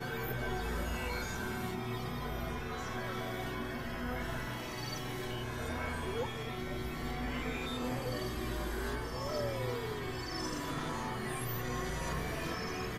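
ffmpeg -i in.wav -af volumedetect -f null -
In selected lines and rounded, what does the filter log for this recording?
mean_volume: -37.4 dB
max_volume: -24.4 dB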